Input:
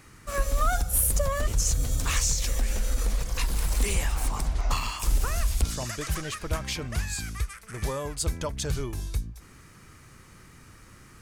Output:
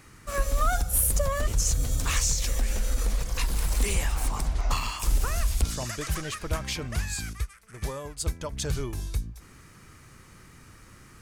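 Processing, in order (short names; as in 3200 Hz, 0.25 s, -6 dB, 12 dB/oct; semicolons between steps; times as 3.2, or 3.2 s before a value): 7.33–8.52 upward expander 1.5:1, over -40 dBFS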